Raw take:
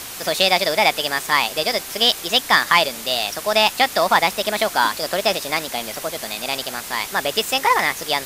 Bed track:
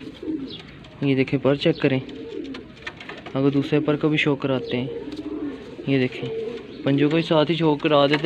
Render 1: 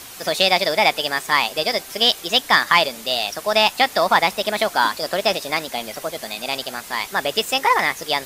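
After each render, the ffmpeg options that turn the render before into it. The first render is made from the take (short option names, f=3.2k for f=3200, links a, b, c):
-af "afftdn=nr=6:nf=-33"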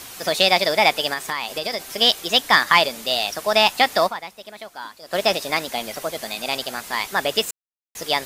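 -filter_complex "[0:a]asettb=1/sr,asplit=3[a][b][c];[a]atrim=end=1.134[d];[b]atrim=start=1.13:end=1.98,asetpts=PTS-STARTPTS,afade=t=in:d=0.004:c=qsin,afade=t=out:st=0.846:d=0.004:c=qsin,acompressor=threshold=-21dB:ratio=6:attack=3.2:release=140:knee=1:detection=peak[e];[c]atrim=start=1.976[f];[d][e]acrossfade=d=0.004:c1=hsin:c2=qsin[g];[g][f]acrossfade=d=0.004:c1=qsin:c2=hsin,asplit=5[h][i][j][k][l];[h]atrim=end=4.37,asetpts=PTS-STARTPTS,afade=t=out:st=4.06:d=0.31:c=exp:silence=0.141254[m];[i]atrim=start=4.37:end=4.84,asetpts=PTS-STARTPTS,volume=-17dB[n];[j]atrim=start=4.84:end=7.51,asetpts=PTS-STARTPTS,afade=t=in:d=0.31:c=exp:silence=0.141254,afade=t=out:st=2.666:d=0.004:c=hsin[o];[k]atrim=start=7.51:end=7.95,asetpts=PTS-STARTPTS,volume=0[p];[l]atrim=start=7.95,asetpts=PTS-STARTPTS,afade=t=in:d=0.004:c=hsin[q];[m][n][o][p][q]concat=n=5:v=0:a=1"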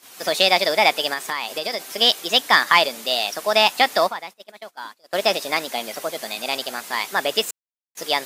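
-af "agate=range=-17dB:threshold=-37dB:ratio=16:detection=peak,highpass=210"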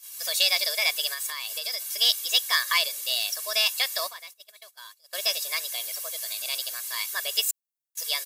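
-af "aderivative,aecho=1:1:1.8:0.87"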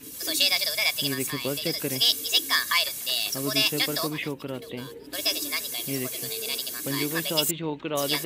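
-filter_complex "[1:a]volume=-11.5dB[a];[0:a][a]amix=inputs=2:normalize=0"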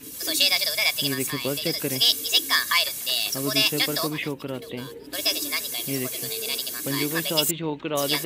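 -af "volume=2dB"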